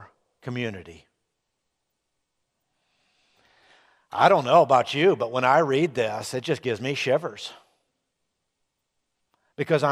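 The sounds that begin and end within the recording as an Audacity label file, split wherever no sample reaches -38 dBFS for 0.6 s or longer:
4.130000	7.550000	sound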